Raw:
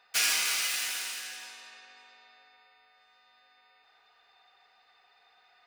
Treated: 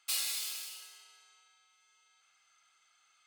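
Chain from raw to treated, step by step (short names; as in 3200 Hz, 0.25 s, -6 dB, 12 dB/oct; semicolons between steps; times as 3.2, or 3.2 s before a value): notches 50/100/150 Hz; speed mistake 45 rpm record played at 78 rpm; HPF 92 Hz; gain -6 dB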